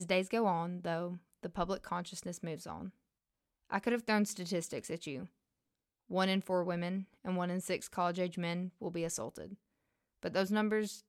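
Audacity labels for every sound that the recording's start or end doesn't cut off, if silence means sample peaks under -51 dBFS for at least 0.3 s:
3.700000	5.270000	sound
6.100000	9.550000	sound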